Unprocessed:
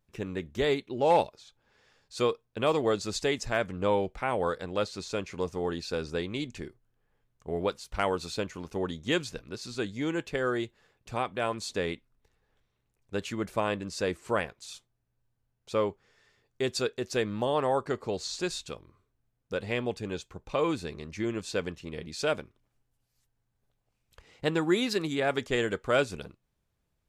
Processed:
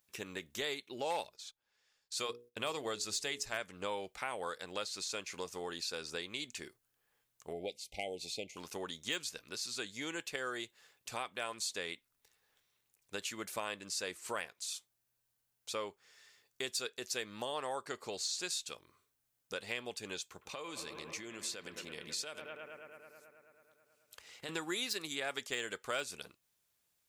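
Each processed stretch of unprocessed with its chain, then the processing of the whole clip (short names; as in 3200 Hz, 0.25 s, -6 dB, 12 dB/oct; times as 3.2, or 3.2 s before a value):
1.24–3.6 notches 60/120/180/240/300/360/420/480 Hz + gate -58 dBFS, range -14 dB + low shelf 120 Hz +9 dB
7.53–8.57 brick-wall FIR band-stop 830–2000 Hz + high shelf 4000 Hz -11.5 dB
20.22–24.49 HPF 56 Hz + analogue delay 0.108 s, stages 2048, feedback 79%, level -14.5 dB + compressor, threshold -35 dBFS
whole clip: de-esser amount 65%; tilt +4 dB/oct; compressor 2:1, threshold -39 dBFS; gain -2 dB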